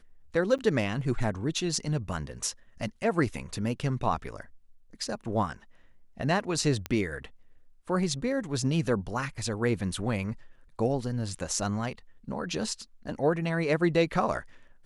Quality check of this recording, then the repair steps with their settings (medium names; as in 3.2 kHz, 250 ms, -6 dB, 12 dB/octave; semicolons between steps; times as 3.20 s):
0.58–0.59 s: dropout 8.2 ms
6.86 s: pop -16 dBFS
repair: de-click; interpolate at 0.58 s, 8.2 ms